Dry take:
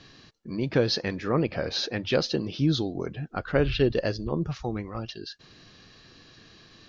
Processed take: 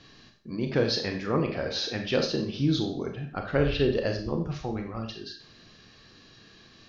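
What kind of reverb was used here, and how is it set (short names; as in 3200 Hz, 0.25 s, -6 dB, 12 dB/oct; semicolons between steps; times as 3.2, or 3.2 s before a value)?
Schroeder reverb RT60 0.46 s, combs from 28 ms, DRR 3.5 dB; gain -2.5 dB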